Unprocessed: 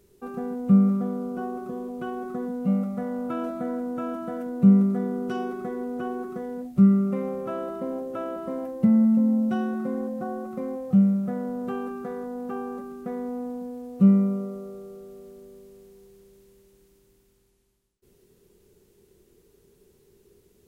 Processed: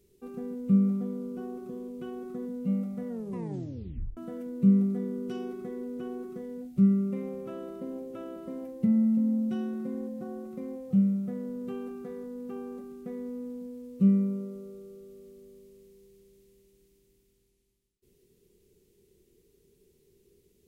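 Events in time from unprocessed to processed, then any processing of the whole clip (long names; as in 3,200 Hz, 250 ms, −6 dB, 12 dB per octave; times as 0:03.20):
0:03.08: tape stop 1.09 s
whole clip: flat-topped bell 1,000 Hz −8.5 dB; hum removal 105.1 Hz, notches 28; level −5 dB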